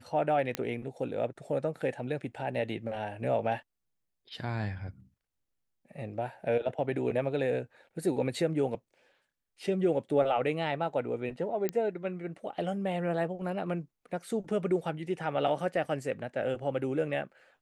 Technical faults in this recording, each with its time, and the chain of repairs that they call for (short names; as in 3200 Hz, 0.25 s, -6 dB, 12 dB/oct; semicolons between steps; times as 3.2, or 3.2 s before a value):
0.55 pop -14 dBFS
11.69 pop -16 dBFS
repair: de-click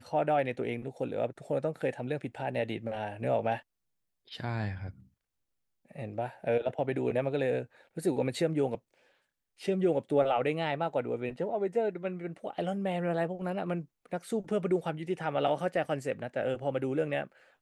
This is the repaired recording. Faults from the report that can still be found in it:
none